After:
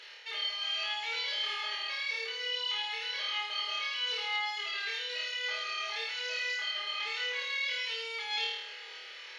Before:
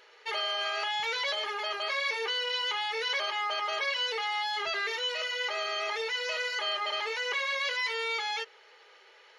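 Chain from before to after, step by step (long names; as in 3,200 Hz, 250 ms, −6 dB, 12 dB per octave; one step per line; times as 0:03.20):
meter weighting curve D
reversed playback
downward compressor 12 to 1, threshold −35 dBFS, peak gain reduction 18 dB
reversed playback
low-shelf EQ 110 Hz −9 dB
flutter between parallel walls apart 4.5 metres, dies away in 0.84 s
level −1.5 dB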